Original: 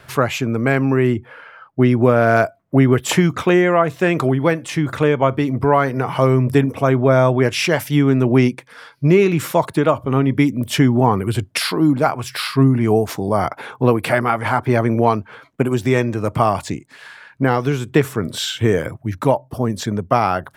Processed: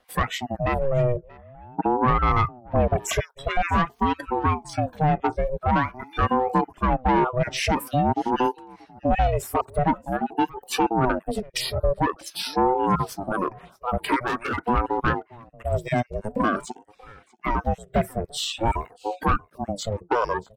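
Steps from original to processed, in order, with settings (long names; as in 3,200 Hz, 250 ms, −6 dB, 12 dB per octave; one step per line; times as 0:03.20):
time-frequency cells dropped at random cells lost 25%
0:01.12–0:02.08: low-pass filter 1,000 Hz 6 dB per octave
noise reduction from a noise print of the clip's start 16 dB
in parallel at +0.5 dB: downward compressor, threshold −28 dBFS, peak gain reduction 18 dB
0:14.27–0:14.68: on the sum: hard clipping −17 dBFS, distortion −27 dB
dynamic equaliser 520 Hz, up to +6 dB, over −29 dBFS, Q 0.85
soft clipping −7 dBFS, distortion −13 dB
on a send: single-tap delay 632 ms −23.5 dB
on the sum: ring modulator whose carrier an LFO sweeps 440 Hz, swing 45%, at 0.47 Hz
level −4.5 dB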